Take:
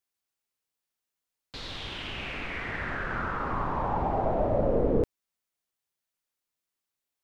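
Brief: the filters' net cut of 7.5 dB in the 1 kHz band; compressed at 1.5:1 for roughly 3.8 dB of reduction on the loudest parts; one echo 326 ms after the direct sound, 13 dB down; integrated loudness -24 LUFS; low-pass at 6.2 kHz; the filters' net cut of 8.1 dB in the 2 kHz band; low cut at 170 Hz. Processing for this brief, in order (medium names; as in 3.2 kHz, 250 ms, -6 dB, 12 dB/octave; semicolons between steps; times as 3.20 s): high-pass 170 Hz; low-pass 6.2 kHz; peaking EQ 1 kHz -8.5 dB; peaking EQ 2 kHz -7.5 dB; compression 1.5:1, threshold -34 dBFS; delay 326 ms -13 dB; trim +12.5 dB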